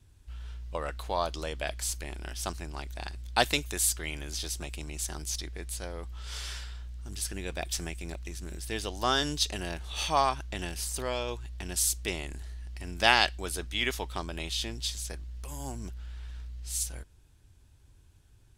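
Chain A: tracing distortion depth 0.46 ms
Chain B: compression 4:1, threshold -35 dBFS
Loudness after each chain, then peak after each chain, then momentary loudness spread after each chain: -33.0 LUFS, -39.0 LUFS; -5.5 dBFS, -17.5 dBFS; 14 LU, 6 LU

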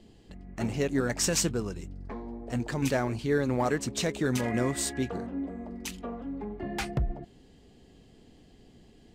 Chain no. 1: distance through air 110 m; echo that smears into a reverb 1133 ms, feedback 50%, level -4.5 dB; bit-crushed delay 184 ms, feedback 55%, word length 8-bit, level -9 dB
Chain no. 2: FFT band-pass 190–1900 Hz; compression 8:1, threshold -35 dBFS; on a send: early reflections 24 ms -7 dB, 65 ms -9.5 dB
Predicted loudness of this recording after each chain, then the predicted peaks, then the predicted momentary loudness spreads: -30.0 LUFS, -39.5 LUFS; -14.0 dBFS, -24.5 dBFS; 11 LU, 20 LU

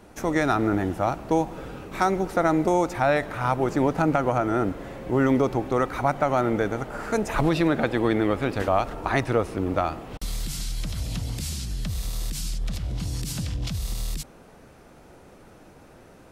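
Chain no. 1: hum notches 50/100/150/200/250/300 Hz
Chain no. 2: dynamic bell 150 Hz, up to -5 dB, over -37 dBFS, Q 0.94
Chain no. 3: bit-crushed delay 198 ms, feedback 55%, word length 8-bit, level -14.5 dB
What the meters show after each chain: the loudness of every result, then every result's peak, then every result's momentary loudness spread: -25.5 LUFS, -26.5 LUFS, -25.5 LUFS; -8.5 dBFS, -8.5 dBFS, -9.0 dBFS; 10 LU, 9 LU, 9 LU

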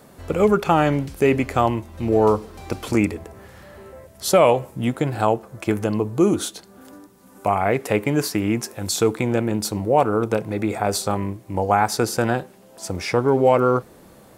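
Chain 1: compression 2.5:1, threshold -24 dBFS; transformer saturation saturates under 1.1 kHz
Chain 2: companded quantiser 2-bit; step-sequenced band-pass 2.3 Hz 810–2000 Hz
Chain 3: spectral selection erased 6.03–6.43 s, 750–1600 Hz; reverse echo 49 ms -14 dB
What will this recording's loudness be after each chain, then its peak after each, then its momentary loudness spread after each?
-29.5 LUFS, -24.5 LUFS, -21.0 LUFS; -9.5 dBFS, -5.0 dBFS, -3.0 dBFS; 16 LU, 15 LU, 10 LU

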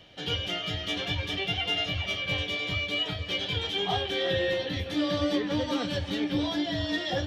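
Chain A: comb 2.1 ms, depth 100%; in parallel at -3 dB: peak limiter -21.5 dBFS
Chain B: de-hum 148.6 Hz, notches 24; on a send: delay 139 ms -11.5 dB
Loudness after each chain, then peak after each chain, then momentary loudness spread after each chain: -22.0 LUFS, -29.0 LUFS; -11.0 dBFS, -15.5 dBFS; 4 LU, 4 LU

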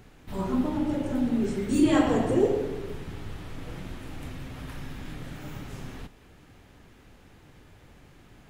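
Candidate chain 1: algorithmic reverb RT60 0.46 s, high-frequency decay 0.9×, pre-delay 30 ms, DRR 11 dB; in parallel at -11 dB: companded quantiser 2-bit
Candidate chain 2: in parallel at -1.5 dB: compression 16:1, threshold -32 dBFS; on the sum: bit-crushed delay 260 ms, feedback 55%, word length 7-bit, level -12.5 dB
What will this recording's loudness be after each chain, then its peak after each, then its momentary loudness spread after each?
-26.5 LUFS, -27.0 LUFS; -3.5 dBFS, -8.0 dBFS; 15 LU, 14 LU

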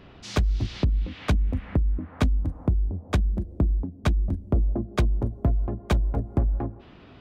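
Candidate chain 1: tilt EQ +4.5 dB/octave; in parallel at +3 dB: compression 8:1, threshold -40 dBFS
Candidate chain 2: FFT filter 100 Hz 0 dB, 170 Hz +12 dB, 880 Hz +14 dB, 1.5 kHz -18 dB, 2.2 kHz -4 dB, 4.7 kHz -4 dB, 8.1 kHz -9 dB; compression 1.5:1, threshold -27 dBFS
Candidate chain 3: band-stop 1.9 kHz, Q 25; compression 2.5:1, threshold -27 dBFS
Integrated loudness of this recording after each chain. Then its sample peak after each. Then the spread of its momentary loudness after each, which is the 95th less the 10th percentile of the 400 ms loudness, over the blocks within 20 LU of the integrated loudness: -31.5 LUFS, -26.0 LUFS, -32.0 LUFS; -8.0 dBFS, -4.5 dBFS, -14.5 dBFS; 11 LU, 4 LU, 3 LU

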